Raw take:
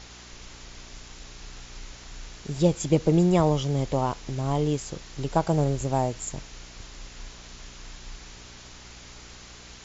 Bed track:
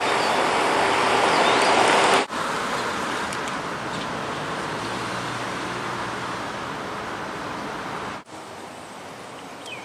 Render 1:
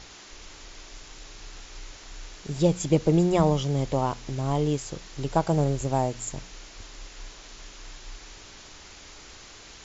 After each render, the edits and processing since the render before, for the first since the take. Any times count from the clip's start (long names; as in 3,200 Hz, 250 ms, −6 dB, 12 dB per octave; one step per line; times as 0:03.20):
hum removal 60 Hz, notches 4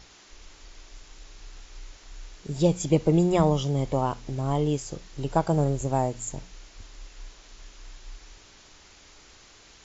noise reduction from a noise print 6 dB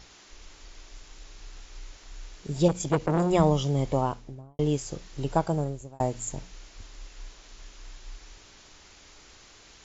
0:02.68–0:03.30: saturating transformer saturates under 750 Hz
0:03.94–0:04.59: fade out and dull
0:05.29–0:06.00: fade out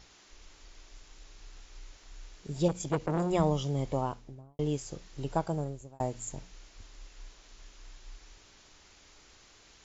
level −5.5 dB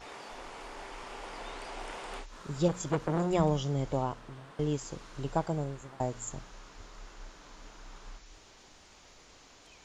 mix in bed track −25 dB